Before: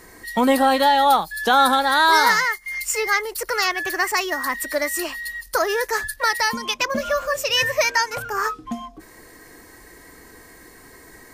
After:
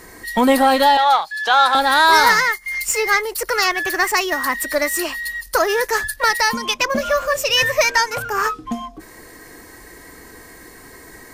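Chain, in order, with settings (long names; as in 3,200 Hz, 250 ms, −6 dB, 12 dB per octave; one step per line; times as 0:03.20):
in parallel at −6 dB: asymmetric clip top −29.5 dBFS
0:00.97–0:01.75: on the sum: three-way crossover with the lows and the highs turned down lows −23 dB, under 580 Hz, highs −18 dB, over 6,800 Hz
level +1 dB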